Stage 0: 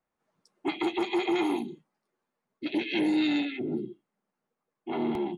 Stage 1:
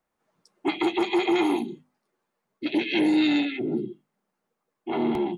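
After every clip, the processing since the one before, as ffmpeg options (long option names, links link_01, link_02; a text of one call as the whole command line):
ffmpeg -i in.wav -af "bandreject=frequency=50:width_type=h:width=6,bandreject=frequency=100:width_type=h:width=6,bandreject=frequency=150:width_type=h:width=6,bandreject=frequency=200:width_type=h:width=6,bandreject=frequency=250:width_type=h:width=6,volume=4.5dB" out.wav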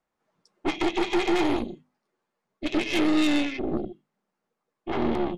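ffmpeg -i in.wav -af "lowpass=7400,aeval=exprs='0.224*(cos(1*acos(clip(val(0)/0.224,-1,1)))-cos(1*PI/2))+0.0355*(cos(6*acos(clip(val(0)/0.224,-1,1)))-cos(6*PI/2))':channel_layout=same,volume=-1.5dB" out.wav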